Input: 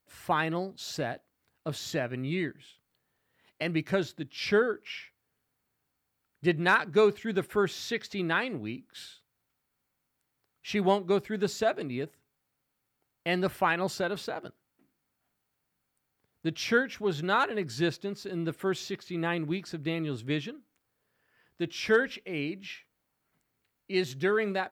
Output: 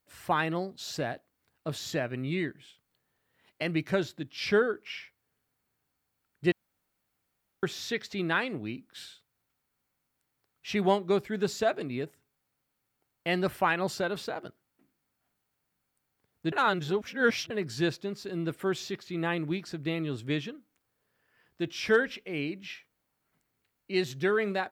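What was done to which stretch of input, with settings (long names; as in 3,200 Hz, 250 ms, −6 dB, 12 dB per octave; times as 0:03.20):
0:06.52–0:07.63: fill with room tone
0:16.52–0:17.50: reverse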